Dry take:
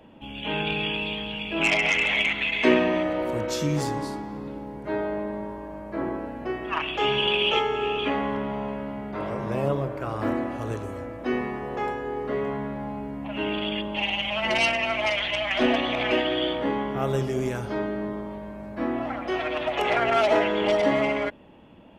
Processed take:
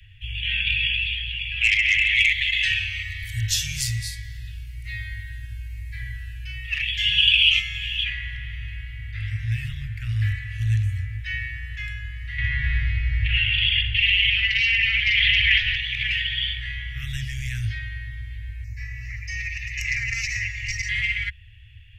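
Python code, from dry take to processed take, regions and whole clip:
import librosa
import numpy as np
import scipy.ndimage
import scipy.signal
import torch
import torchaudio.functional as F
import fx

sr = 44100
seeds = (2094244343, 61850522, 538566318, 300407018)

y = fx.chain(x, sr, fx.high_shelf(hz=3800.0, db=11.5),
    fx.notch_cascade(direction='falling', hz=1.1), at=(2.16, 8.04))
y = fx.chain(y, sr, fx.lowpass(hz=5400.0, slope=24),
    fx.echo_filtered(ms=63, feedback_pct=64, hz=1900.0, wet_db=-5.0),
    fx.env_flatten(amount_pct=100), at=(12.38, 15.76))
y = fx.chain(y, sr, fx.high_shelf_res(hz=4800.0, db=8.0, q=3.0),
    fx.fixed_phaser(hz=2200.0, stages=8), at=(18.64, 20.89))
y = scipy.signal.sosfilt(scipy.signal.cheby1(5, 1.0, [110.0, 1800.0], 'bandstop', fs=sr, output='sos'), y)
y = fx.bass_treble(y, sr, bass_db=7, treble_db=-6)
y = fx.rider(y, sr, range_db=4, speed_s=2.0)
y = y * 10.0 ** (5.0 / 20.0)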